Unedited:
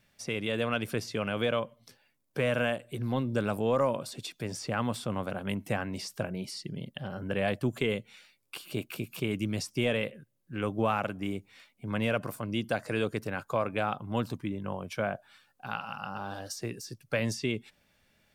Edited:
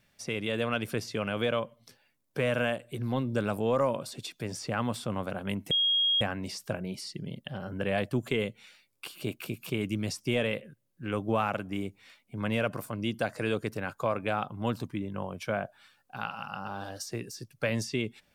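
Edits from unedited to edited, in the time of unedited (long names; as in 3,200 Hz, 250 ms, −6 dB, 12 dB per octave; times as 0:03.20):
0:05.71: insert tone 3,270 Hz −22.5 dBFS 0.50 s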